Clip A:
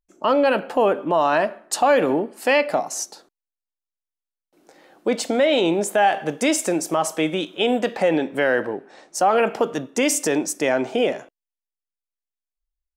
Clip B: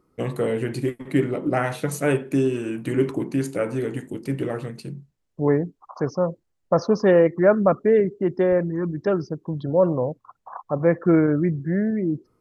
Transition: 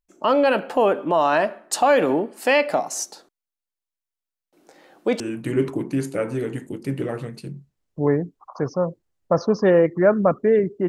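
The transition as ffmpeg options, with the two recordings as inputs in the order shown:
ffmpeg -i cue0.wav -i cue1.wav -filter_complex "[0:a]apad=whole_dur=10.88,atrim=end=10.88,atrim=end=5.202[link_01];[1:a]atrim=start=2.608:end=8.29[link_02];[link_01][link_02]acrossfade=duration=0.004:curve1=hsin:curve2=hsin" out.wav

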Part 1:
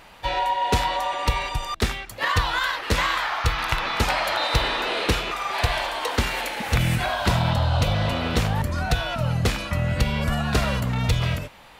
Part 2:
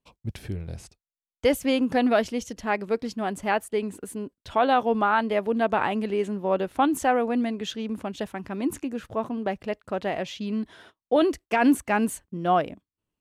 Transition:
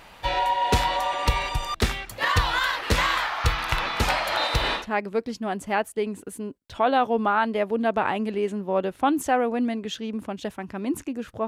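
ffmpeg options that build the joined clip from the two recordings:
ffmpeg -i cue0.wav -i cue1.wav -filter_complex "[0:a]asettb=1/sr,asplit=3[link_01][link_02][link_03];[link_01]atrim=end=3.194[link_04];[link_02]atrim=start=3.19:end=4.87,asetpts=PTS-STARTPTS,afade=type=in:duration=0.004:curve=qsin,afade=type=out:start_time=1.676:duration=0.004:curve=qsin,tremolo=f=3.3:d=0.29[link_05];[link_03]atrim=start=4.866[link_06];[link_04][link_05]acrossfade=duration=0.004:curve1=hsin:curve2=qsin[link_07];[link_07][link_06]acrossfade=duration=0.004:curve1=qsin:curve2=hsin,apad=whole_dur=11.47,atrim=end=11.47,atrim=end=4.87,asetpts=PTS-STARTPTS[link_08];[1:a]atrim=start=2.49:end=9.23,asetpts=PTS-STARTPTS[link_09];[link_08][link_09]acrossfade=duration=0.14:curve1=tri:curve2=tri" out.wav

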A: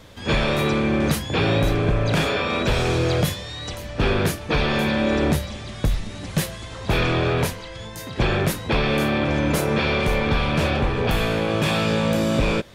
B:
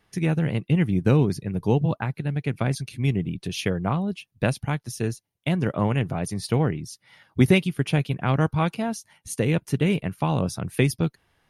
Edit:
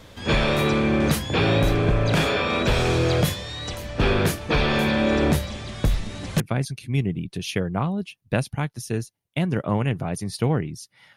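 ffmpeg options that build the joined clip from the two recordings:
ffmpeg -i cue0.wav -i cue1.wav -filter_complex "[0:a]apad=whole_dur=11.16,atrim=end=11.16,atrim=end=6.402[link_01];[1:a]atrim=start=2.498:end=7.26[link_02];[link_01][link_02]acrossfade=duration=0.004:curve1=hsin:curve2=hsin" out.wav

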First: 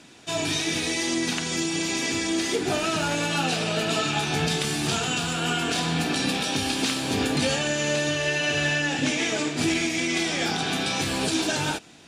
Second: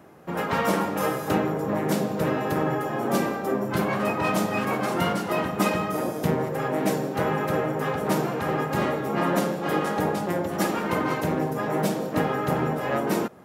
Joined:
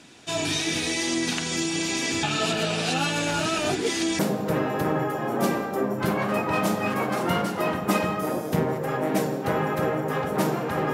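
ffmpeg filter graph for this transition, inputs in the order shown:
ffmpeg -i cue0.wav -i cue1.wav -filter_complex "[0:a]apad=whole_dur=10.93,atrim=end=10.93,asplit=2[link_01][link_02];[link_01]atrim=end=2.232[link_03];[link_02]atrim=start=2.228:end=4.192,asetpts=PTS-STARTPTS,areverse[link_04];[1:a]atrim=start=1.898:end=8.64[link_05];[link_03][link_04]acrossfade=duration=0.004:curve1=hsin:curve2=hsin[link_06];[link_06][link_05]acrossfade=duration=0.004:curve1=hsin:curve2=hsin" out.wav

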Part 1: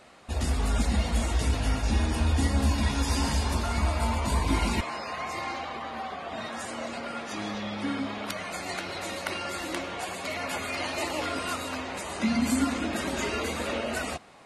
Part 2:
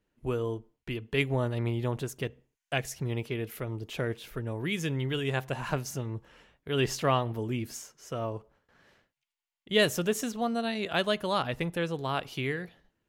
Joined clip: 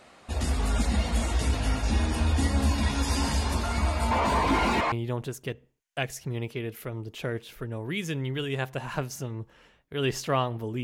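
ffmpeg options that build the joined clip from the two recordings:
ffmpeg -i cue0.wav -i cue1.wav -filter_complex "[0:a]asettb=1/sr,asplit=3[link_01][link_02][link_03];[link_01]atrim=end=4.114[link_04];[link_02]atrim=start=4.11:end=4.92,asetpts=PTS-STARTPTS,afade=type=in:duration=0.004:curve=qsin,afade=type=out:start_time=0.806:duration=0.004:curve=qsin,asplit=2[link_05][link_06];[link_06]highpass=frequency=720:poles=1,volume=23dB,asoftclip=type=tanh:threshold=-13.5dB[link_07];[link_05][link_07]amix=inputs=2:normalize=0,lowpass=frequency=1100:poles=1,volume=-6dB[link_08];[link_03]atrim=start=4.916[link_09];[link_04][link_08]acrossfade=duration=0.004:curve1=hsin:curve2=qsin[link_10];[link_10][link_09]acrossfade=duration=0.004:curve1=qsin:curve2=hsin,apad=whole_dur=10.83,atrim=end=10.83,atrim=end=4.922[link_11];[1:a]atrim=start=1.668:end=7.58[link_12];[link_11][link_12]acrossfade=duration=0.004:curve1=hsin:curve2=hsin" out.wav

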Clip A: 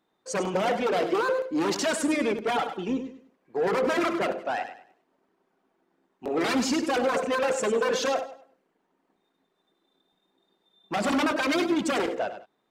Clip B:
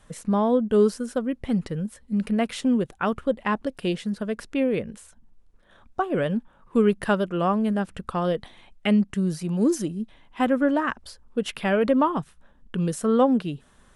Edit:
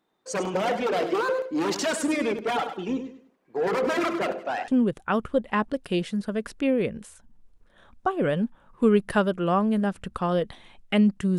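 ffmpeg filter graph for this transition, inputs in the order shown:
ffmpeg -i cue0.wav -i cue1.wav -filter_complex "[0:a]apad=whole_dur=11.38,atrim=end=11.38,atrim=end=4.682[link_01];[1:a]atrim=start=2.608:end=9.31[link_02];[link_01][link_02]acrossfade=duration=0.004:curve1=hsin:curve2=hsin" out.wav

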